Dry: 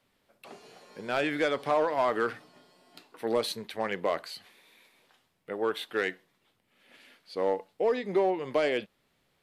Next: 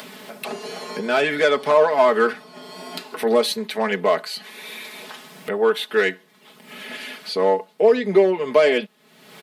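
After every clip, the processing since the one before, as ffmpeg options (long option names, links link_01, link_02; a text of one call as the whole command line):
ffmpeg -i in.wav -af "highpass=frequency=150:width=0.5412,highpass=frequency=150:width=1.3066,aecho=1:1:4.7:0.87,acompressor=mode=upward:threshold=-29dB:ratio=2.5,volume=7.5dB" out.wav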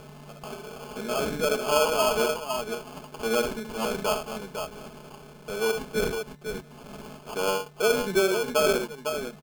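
ffmpeg -i in.wav -af "aeval=exprs='val(0)+0.0112*sin(2*PI*5900*n/s)':channel_layout=same,aecho=1:1:67|504:0.398|0.473,acrusher=samples=23:mix=1:aa=0.000001,volume=-8.5dB" out.wav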